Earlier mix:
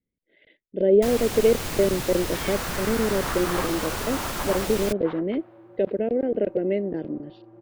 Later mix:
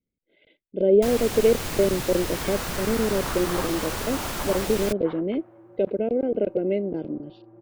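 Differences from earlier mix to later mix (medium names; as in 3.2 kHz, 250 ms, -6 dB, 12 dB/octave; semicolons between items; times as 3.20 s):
speech: add Butterworth band-stop 1.8 kHz, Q 3.7; second sound: add distance through air 450 m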